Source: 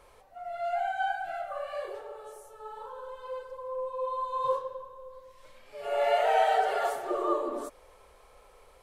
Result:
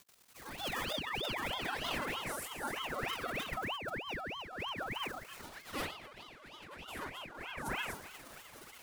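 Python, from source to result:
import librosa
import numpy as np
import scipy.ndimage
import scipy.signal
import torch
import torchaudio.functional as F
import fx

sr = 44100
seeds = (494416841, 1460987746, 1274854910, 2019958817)

y = fx.fade_in_head(x, sr, length_s=1.93)
y = fx.peak_eq(y, sr, hz=87.0, db=-4.5, octaves=1.2)
y = fx.notch(y, sr, hz=7700.0, q=8.8)
y = fx.echo_feedback(y, sr, ms=256, feedback_pct=20, wet_db=-7)
y = fx.dmg_crackle(y, sr, seeds[0], per_s=210.0, level_db=-45.0)
y = fx.pitch_keep_formants(y, sr, semitones=11.5)
y = fx.over_compress(y, sr, threshold_db=-40.0, ratio=-1.0)
y = fx.high_shelf(y, sr, hz=4800.0, db=6.5)
y = np.sign(y) * np.maximum(np.abs(y) - 10.0 ** (-60.0 / 20.0), 0.0)
y = fx.ring_lfo(y, sr, carrier_hz=1200.0, swing_pct=80, hz=3.2)
y = F.gain(torch.from_numpy(y), 1.0).numpy()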